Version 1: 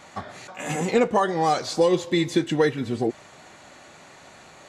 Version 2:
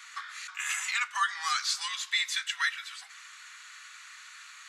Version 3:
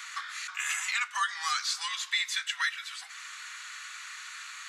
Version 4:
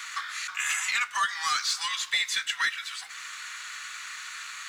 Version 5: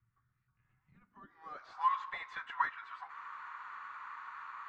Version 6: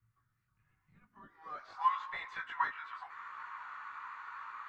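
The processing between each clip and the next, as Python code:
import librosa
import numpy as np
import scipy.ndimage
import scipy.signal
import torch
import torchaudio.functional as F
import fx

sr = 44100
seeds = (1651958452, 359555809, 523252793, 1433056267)

y1 = scipy.signal.sosfilt(scipy.signal.butter(8, 1200.0, 'highpass', fs=sr, output='sos'), x)
y1 = y1 * 10.0 ** (2.5 / 20.0)
y2 = fx.band_squash(y1, sr, depth_pct=40)
y3 = fx.leveller(y2, sr, passes=1)
y4 = fx.filter_sweep_lowpass(y3, sr, from_hz=120.0, to_hz=1000.0, start_s=0.81, end_s=1.86, q=4.8)
y4 = y4 * 10.0 ** (-5.0 / 20.0)
y5 = fx.chorus_voices(y4, sr, voices=2, hz=0.88, base_ms=19, depth_ms=1.6, mix_pct=45)
y5 = y5 * 10.0 ** (4.0 / 20.0)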